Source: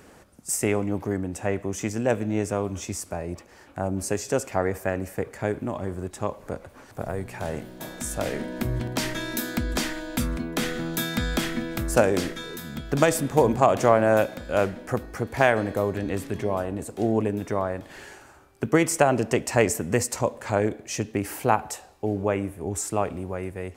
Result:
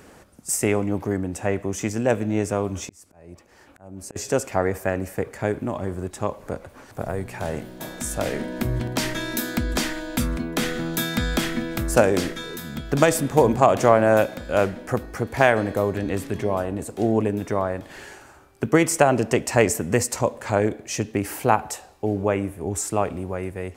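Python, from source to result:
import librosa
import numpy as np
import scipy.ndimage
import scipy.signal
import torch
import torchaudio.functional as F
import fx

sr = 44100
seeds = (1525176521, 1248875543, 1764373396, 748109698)

y = fx.auto_swell(x, sr, attack_ms=771.0, at=(2.85, 4.16))
y = y * 10.0 ** (2.5 / 20.0)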